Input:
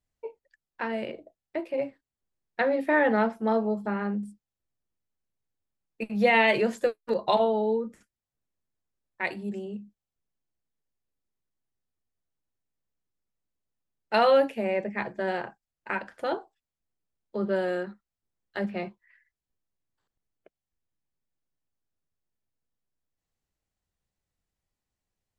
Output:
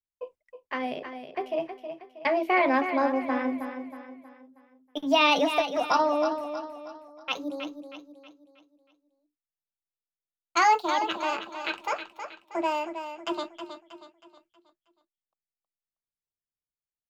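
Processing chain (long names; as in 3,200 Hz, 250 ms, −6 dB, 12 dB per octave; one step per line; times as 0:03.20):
gliding playback speed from 110% → 187%
noise gate with hold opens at −48 dBFS
repeating echo 318 ms, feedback 42%, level −9 dB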